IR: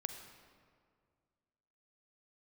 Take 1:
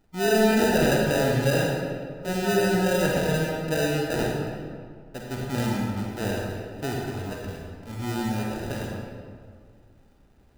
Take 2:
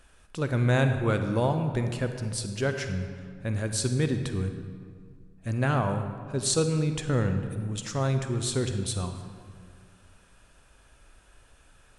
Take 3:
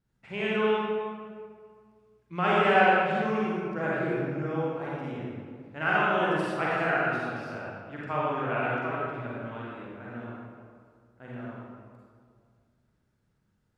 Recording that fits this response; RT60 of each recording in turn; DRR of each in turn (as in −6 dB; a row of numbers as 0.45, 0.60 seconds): 2; 2.0, 2.0, 2.0 seconds; −1.5, 6.5, −7.5 decibels